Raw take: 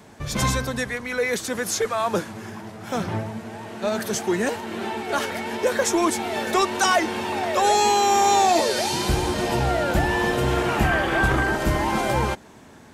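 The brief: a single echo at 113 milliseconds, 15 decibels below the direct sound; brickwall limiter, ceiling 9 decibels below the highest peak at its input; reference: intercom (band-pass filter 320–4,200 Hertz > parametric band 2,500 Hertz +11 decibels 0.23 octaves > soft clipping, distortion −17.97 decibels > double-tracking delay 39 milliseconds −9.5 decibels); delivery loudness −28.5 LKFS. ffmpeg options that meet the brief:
ffmpeg -i in.wav -filter_complex "[0:a]alimiter=limit=-16dB:level=0:latency=1,highpass=320,lowpass=4200,equalizer=frequency=2500:width_type=o:width=0.23:gain=11,aecho=1:1:113:0.178,asoftclip=threshold=-19.5dB,asplit=2[link_01][link_02];[link_02]adelay=39,volume=-9.5dB[link_03];[link_01][link_03]amix=inputs=2:normalize=0,volume=-1.5dB" out.wav

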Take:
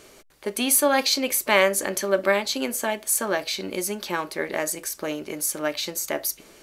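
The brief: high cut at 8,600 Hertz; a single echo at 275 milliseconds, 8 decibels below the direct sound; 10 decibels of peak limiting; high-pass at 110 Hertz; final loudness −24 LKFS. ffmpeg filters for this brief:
ffmpeg -i in.wav -af "highpass=110,lowpass=8600,alimiter=limit=-13dB:level=0:latency=1,aecho=1:1:275:0.398,volume=2.5dB" out.wav

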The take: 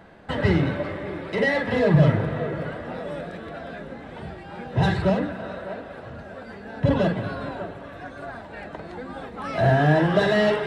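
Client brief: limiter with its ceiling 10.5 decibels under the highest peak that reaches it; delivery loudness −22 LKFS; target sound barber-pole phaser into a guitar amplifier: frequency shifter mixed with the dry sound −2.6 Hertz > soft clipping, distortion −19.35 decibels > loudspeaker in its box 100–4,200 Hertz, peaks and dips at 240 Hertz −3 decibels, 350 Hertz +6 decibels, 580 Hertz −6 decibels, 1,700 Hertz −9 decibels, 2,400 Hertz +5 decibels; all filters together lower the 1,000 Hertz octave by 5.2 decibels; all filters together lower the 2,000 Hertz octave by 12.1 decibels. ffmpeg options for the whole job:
ffmpeg -i in.wav -filter_complex "[0:a]equalizer=frequency=1000:width_type=o:gain=-4,equalizer=frequency=2000:width_type=o:gain=-8.5,alimiter=limit=-17dB:level=0:latency=1,asplit=2[link_01][link_02];[link_02]afreqshift=-2.6[link_03];[link_01][link_03]amix=inputs=2:normalize=1,asoftclip=threshold=-21dB,highpass=100,equalizer=frequency=240:width_type=q:width=4:gain=-3,equalizer=frequency=350:width_type=q:width=4:gain=6,equalizer=frequency=580:width_type=q:width=4:gain=-6,equalizer=frequency=1700:width_type=q:width=4:gain=-9,equalizer=frequency=2400:width_type=q:width=4:gain=5,lowpass=frequency=4200:width=0.5412,lowpass=frequency=4200:width=1.3066,volume=12.5dB" out.wav

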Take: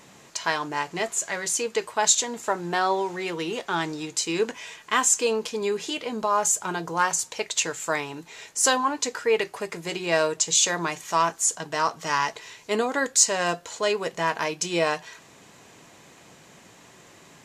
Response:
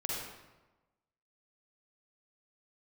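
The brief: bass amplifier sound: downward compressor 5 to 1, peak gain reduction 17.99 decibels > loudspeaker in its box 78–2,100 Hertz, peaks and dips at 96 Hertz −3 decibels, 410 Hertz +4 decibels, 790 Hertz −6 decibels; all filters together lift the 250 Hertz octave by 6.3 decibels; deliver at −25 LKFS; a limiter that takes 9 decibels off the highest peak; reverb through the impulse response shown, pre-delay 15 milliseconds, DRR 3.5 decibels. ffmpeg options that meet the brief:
-filter_complex "[0:a]equalizer=frequency=250:width_type=o:gain=8,alimiter=limit=-12.5dB:level=0:latency=1,asplit=2[link_01][link_02];[1:a]atrim=start_sample=2205,adelay=15[link_03];[link_02][link_03]afir=irnorm=-1:irlink=0,volume=-7dB[link_04];[link_01][link_04]amix=inputs=2:normalize=0,acompressor=threshold=-36dB:ratio=5,highpass=frequency=78:width=0.5412,highpass=frequency=78:width=1.3066,equalizer=frequency=96:width_type=q:width=4:gain=-3,equalizer=frequency=410:width_type=q:width=4:gain=4,equalizer=frequency=790:width_type=q:width=4:gain=-6,lowpass=frequency=2100:width=0.5412,lowpass=frequency=2100:width=1.3066,volume=14dB"

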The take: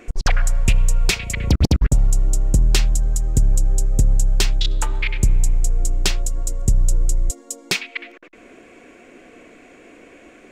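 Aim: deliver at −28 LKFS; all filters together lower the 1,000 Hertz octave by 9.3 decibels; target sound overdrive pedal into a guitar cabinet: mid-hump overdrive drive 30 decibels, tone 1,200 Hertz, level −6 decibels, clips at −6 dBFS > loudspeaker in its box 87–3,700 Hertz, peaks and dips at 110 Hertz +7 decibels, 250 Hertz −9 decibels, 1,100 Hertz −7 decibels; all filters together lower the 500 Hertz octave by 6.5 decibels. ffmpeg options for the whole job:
ffmpeg -i in.wav -filter_complex "[0:a]equalizer=frequency=500:width_type=o:gain=-6,equalizer=frequency=1000:width_type=o:gain=-8,asplit=2[link_01][link_02];[link_02]highpass=frequency=720:poles=1,volume=30dB,asoftclip=type=tanh:threshold=-6dB[link_03];[link_01][link_03]amix=inputs=2:normalize=0,lowpass=frequency=1200:poles=1,volume=-6dB,highpass=87,equalizer=frequency=110:width_type=q:width=4:gain=7,equalizer=frequency=250:width_type=q:width=4:gain=-9,equalizer=frequency=1100:width_type=q:width=4:gain=-7,lowpass=frequency=3700:width=0.5412,lowpass=frequency=3700:width=1.3066,volume=-3.5dB" out.wav

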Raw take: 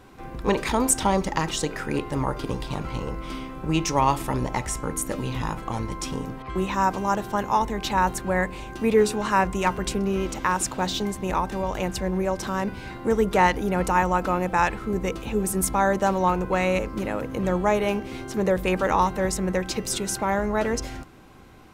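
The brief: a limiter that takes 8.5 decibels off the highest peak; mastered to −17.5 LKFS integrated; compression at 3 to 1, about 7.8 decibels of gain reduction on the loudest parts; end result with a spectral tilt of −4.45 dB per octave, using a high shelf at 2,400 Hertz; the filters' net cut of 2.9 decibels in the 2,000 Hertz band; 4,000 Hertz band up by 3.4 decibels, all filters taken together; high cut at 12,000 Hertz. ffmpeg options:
ffmpeg -i in.wav -af "lowpass=12000,equalizer=frequency=2000:width_type=o:gain=-6,highshelf=frequency=2400:gain=3,equalizer=frequency=4000:width_type=o:gain=3.5,acompressor=threshold=-24dB:ratio=3,volume=13.5dB,alimiter=limit=-6.5dB:level=0:latency=1" out.wav

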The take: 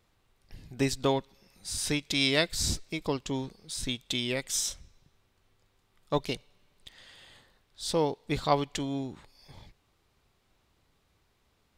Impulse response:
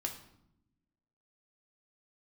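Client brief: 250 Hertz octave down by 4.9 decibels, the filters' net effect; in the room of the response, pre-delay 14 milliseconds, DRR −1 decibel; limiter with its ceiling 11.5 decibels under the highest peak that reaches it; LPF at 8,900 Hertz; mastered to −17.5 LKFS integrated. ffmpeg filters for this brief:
-filter_complex "[0:a]lowpass=8900,equalizer=frequency=250:width_type=o:gain=-6,alimiter=limit=-22dB:level=0:latency=1,asplit=2[link_01][link_02];[1:a]atrim=start_sample=2205,adelay=14[link_03];[link_02][link_03]afir=irnorm=-1:irlink=0,volume=0.5dB[link_04];[link_01][link_04]amix=inputs=2:normalize=0,volume=14dB"

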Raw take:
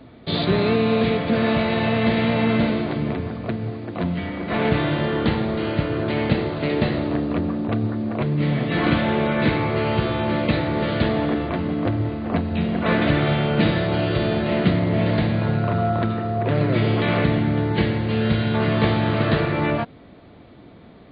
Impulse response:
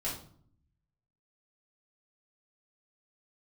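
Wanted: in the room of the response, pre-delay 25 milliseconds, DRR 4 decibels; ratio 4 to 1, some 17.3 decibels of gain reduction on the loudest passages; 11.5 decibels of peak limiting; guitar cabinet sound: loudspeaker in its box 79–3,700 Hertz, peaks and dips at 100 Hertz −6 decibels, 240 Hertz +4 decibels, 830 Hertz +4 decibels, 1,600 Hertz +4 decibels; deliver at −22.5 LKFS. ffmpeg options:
-filter_complex "[0:a]acompressor=threshold=-36dB:ratio=4,alimiter=level_in=10dB:limit=-24dB:level=0:latency=1,volume=-10dB,asplit=2[link_01][link_02];[1:a]atrim=start_sample=2205,adelay=25[link_03];[link_02][link_03]afir=irnorm=-1:irlink=0,volume=-7.5dB[link_04];[link_01][link_04]amix=inputs=2:normalize=0,highpass=79,equalizer=frequency=100:width_type=q:width=4:gain=-6,equalizer=frequency=240:width_type=q:width=4:gain=4,equalizer=frequency=830:width_type=q:width=4:gain=4,equalizer=frequency=1600:width_type=q:width=4:gain=4,lowpass=frequency=3700:width=0.5412,lowpass=frequency=3700:width=1.3066,volume=17.5dB"

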